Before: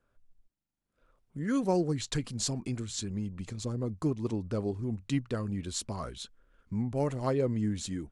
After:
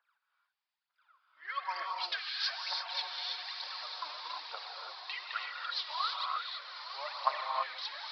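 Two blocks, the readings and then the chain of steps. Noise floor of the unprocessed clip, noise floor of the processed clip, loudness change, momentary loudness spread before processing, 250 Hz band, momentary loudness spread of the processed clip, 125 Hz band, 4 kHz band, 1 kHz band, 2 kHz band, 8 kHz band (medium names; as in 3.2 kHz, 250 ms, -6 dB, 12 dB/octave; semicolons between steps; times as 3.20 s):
-85 dBFS, under -85 dBFS, -3.5 dB, 9 LU, under -40 dB, 8 LU, under -40 dB, +7.0 dB, +6.5 dB, +8.0 dB, -21.0 dB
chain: echo that smears into a reverb 1110 ms, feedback 53%, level -7 dB; phaser 1.1 Hz, delay 3.4 ms, feedback 79%; steep high-pass 870 Hz 36 dB/octave; gated-style reverb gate 360 ms rising, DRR 0 dB; resampled via 11.025 kHz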